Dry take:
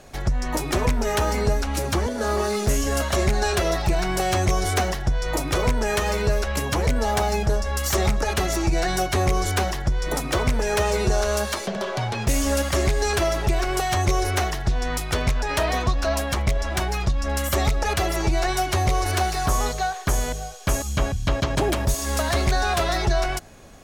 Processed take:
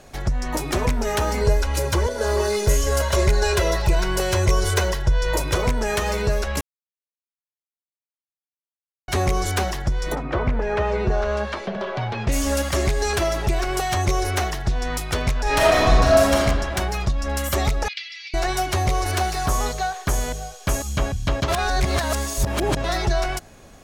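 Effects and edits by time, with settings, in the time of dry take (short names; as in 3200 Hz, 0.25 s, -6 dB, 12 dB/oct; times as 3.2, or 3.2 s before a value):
1.41–5.55 comb 2 ms, depth 68%
6.61–9.08 mute
10.14–12.31 LPF 1700 Hz -> 3700 Hz
15.42–16.37 reverb throw, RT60 1.6 s, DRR -5 dB
17.88–18.34 elliptic band-pass 2100–4900 Hz, stop band 80 dB
21.48–22.84 reverse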